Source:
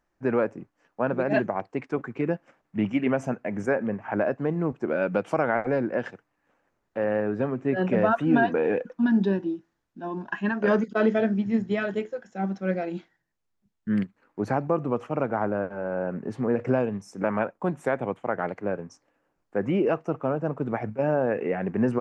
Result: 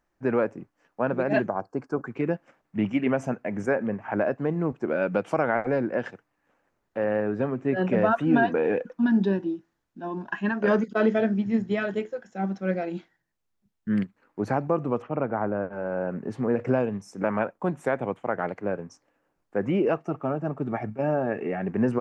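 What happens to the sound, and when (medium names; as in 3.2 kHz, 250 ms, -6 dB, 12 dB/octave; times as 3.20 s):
1.49–2.06 s: time-frequency box 1.7–4.2 kHz -15 dB
15.02–15.73 s: distance through air 290 m
19.97–21.68 s: comb of notches 500 Hz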